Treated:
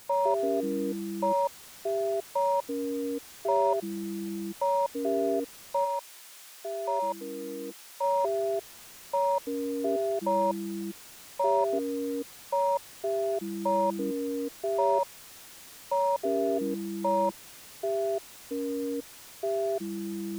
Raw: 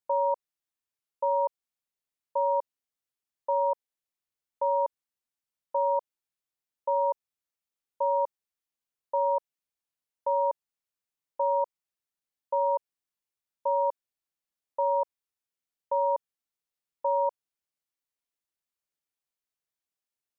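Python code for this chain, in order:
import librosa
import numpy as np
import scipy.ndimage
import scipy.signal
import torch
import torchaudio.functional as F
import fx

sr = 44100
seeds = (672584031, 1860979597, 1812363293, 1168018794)

y = x + 0.5 * 10.0 ** (-42.0 / 20.0) * np.sign(x)
y = fx.echo_pitch(y, sr, ms=120, semitones=-6, count=3, db_per_echo=-3.0)
y = fx.highpass(y, sr, hz=fx.line((5.84, 980.0), (8.02, 680.0)), slope=6, at=(5.84, 8.02), fade=0.02)
y = y * librosa.db_to_amplitude(-1.0)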